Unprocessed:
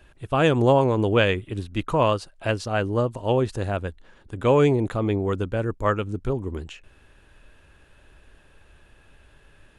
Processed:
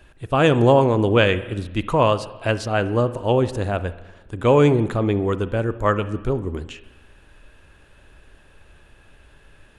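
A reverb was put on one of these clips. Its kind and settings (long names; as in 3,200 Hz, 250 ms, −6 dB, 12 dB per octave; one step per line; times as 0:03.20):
spring reverb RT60 1.1 s, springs 34/54/58 ms, chirp 40 ms, DRR 13 dB
level +3 dB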